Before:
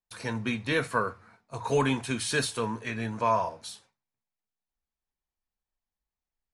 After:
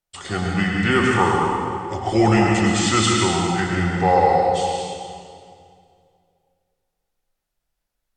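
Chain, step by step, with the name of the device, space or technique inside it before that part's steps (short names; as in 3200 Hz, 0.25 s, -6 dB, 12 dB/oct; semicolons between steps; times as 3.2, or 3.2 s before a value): slowed and reverbed (varispeed -20%; reverb RT60 2.3 s, pre-delay 94 ms, DRR -1.5 dB); gain +7.5 dB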